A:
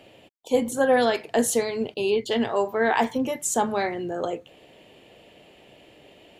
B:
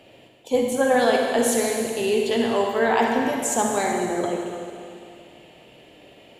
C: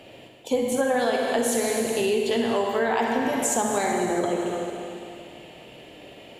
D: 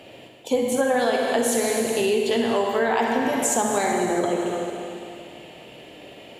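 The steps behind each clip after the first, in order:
reverb RT60 2.4 s, pre-delay 49 ms, DRR 0.5 dB
compressor 4:1, threshold -25 dBFS, peak gain reduction 9.5 dB; gain +4 dB
low shelf 64 Hz -7 dB; gain +2 dB

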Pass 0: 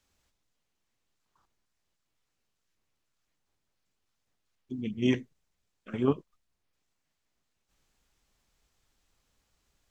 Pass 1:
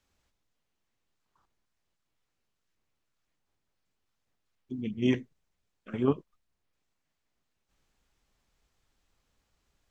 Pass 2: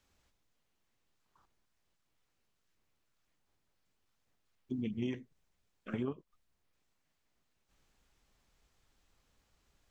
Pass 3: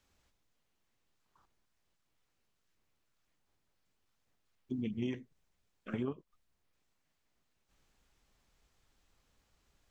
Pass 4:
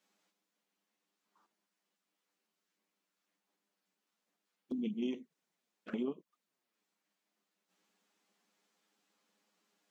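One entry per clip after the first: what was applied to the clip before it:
high shelf 4300 Hz -5.5 dB
compressor 20:1, threshold -34 dBFS, peak gain reduction 16.5 dB; gain +1.5 dB
nothing audible
brick-wall FIR high-pass 160 Hz; envelope flanger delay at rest 10.2 ms, full sweep at -36.5 dBFS; gain +1 dB

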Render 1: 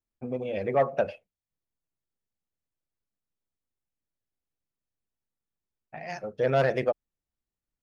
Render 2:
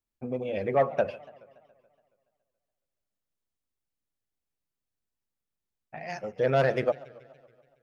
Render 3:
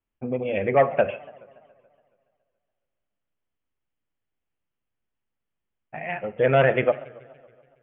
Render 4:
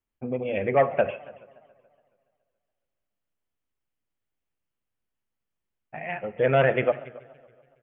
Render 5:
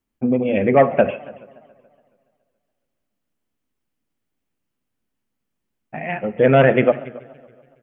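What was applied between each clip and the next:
warbling echo 0.141 s, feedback 62%, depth 217 cents, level -21 dB
steep low-pass 3300 Hz 96 dB/oct; dynamic EQ 2300 Hz, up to +5 dB, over -49 dBFS, Q 1.8; reverb, pre-delay 38 ms, DRR 17.5 dB; gain +5 dB
echo 0.278 s -22.5 dB; gain -2 dB
bell 240 Hz +9.5 dB 1.1 oct; gain +5.5 dB

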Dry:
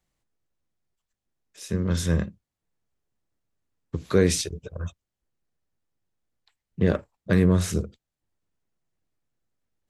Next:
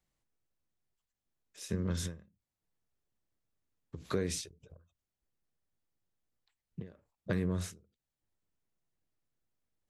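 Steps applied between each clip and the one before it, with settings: compressor 4:1, threshold -25 dBFS, peak gain reduction 10 dB; ending taper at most 150 dB/s; gain -5 dB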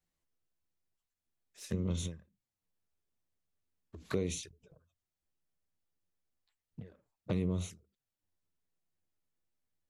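dynamic EQ 2000 Hz, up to +5 dB, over -55 dBFS, Q 1.2; envelope flanger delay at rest 11.9 ms, full sweep at -33 dBFS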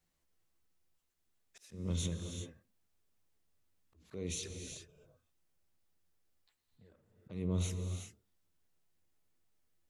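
auto swell 0.446 s; non-linear reverb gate 0.41 s rising, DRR 4.5 dB; gain +5 dB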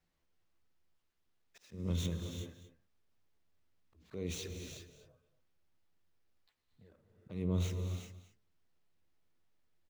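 median filter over 5 samples; echo 0.233 s -15 dB; gain +1 dB

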